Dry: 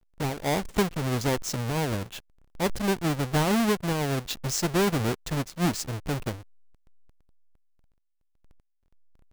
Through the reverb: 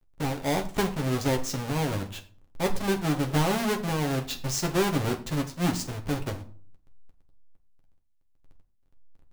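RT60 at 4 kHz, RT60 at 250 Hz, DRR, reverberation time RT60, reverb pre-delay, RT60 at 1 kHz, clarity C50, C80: 0.30 s, 0.60 s, 3.0 dB, 0.45 s, 7 ms, 0.45 s, 13.5 dB, 17.0 dB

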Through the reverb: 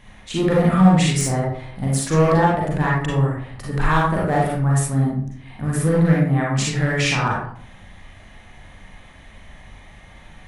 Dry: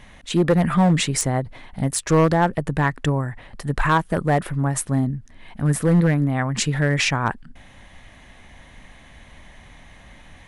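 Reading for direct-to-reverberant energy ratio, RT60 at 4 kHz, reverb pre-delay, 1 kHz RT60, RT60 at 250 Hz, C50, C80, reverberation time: -5.0 dB, 0.40 s, 35 ms, 0.55 s, 0.75 s, -0.5 dB, 5.5 dB, 0.60 s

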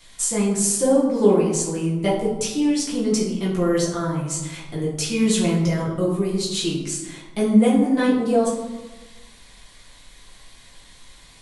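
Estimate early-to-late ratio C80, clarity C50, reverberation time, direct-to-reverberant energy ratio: 6.5 dB, 4.0 dB, 1.2 s, -6.5 dB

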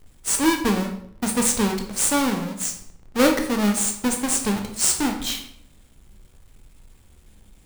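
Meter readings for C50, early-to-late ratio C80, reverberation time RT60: 7.5 dB, 11.0 dB, 0.65 s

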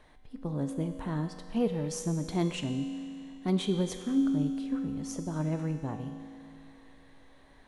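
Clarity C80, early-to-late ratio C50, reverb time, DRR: 8.0 dB, 7.0 dB, 2.6 s, 6.0 dB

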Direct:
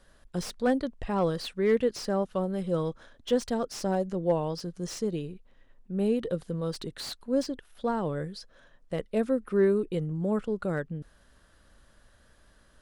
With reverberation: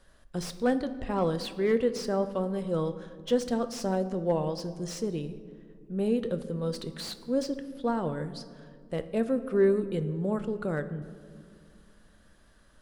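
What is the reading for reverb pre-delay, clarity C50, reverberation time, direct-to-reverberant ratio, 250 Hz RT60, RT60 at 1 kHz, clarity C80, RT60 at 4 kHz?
8 ms, 13.0 dB, 2.1 s, 10.0 dB, 3.1 s, 1.8 s, 14.5 dB, 1.0 s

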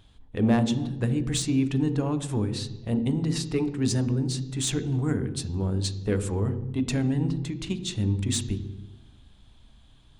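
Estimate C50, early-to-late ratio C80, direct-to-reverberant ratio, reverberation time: 12.5 dB, 14.0 dB, 10.0 dB, 1.1 s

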